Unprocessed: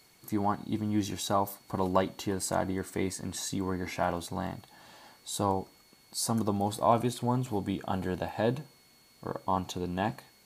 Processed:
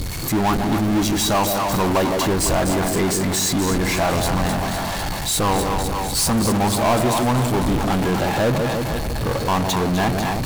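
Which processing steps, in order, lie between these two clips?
wind noise 110 Hz -45 dBFS; split-band echo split 730 Hz, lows 0.158 s, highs 0.25 s, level -9 dB; power-law curve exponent 0.35

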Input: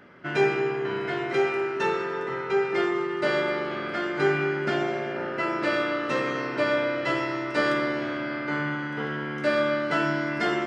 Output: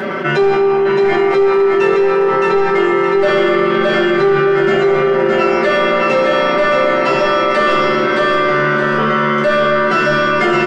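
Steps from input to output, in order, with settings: HPF 240 Hz 6 dB/oct; bell 360 Hz +4.5 dB 2.6 oct; comb 5.2 ms, depth 80%; soft clip -12 dBFS, distortion -17 dB; feedback echo 0.617 s, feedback 32%, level -3.5 dB; shoebox room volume 130 m³, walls furnished, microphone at 1.1 m; fast leveller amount 70%

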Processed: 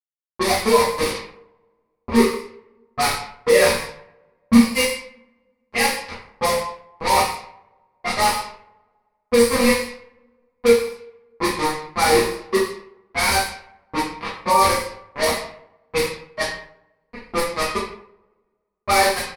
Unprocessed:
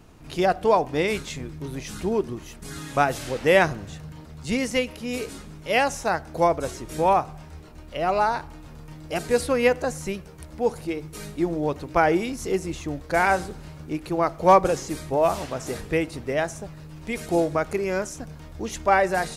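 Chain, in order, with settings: per-bin expansion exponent 2; resonator bank D#2 sus4, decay 0.27 s; on a send: echo 0.11 s -20.5 dB; on the sum: bit-crush 6-bit; ripple EQ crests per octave 0.9, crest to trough 10 dB; limiter -23.5 dBFS, peak gain reduction 10.5 dB; two-slope reverb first 0.61 s, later 1.8 s, from -27 dB, DRR -9.5 dB; low-pass opened by the level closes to 1100 Hz, open at -25 dBFS; gain +8.5 dB

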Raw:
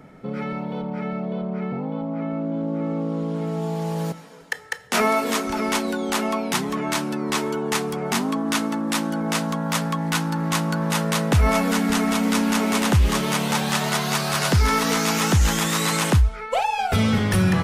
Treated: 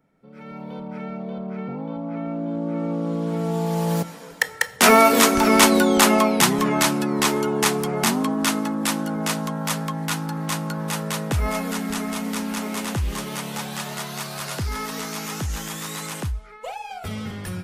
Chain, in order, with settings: Doppler pass-by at 5.75, 8 m/s, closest 4.2 m; high shelf 10000 Hz +8.5 dB; AGC gain up to 15 dB

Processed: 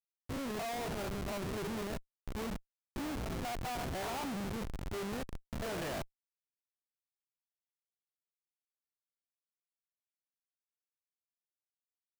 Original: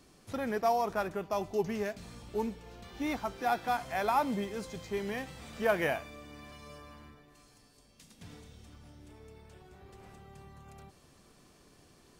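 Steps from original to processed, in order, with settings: stepped spectrum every 0.1 s; Schmitt trigger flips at -38.5 dBFS; gain +1 dB

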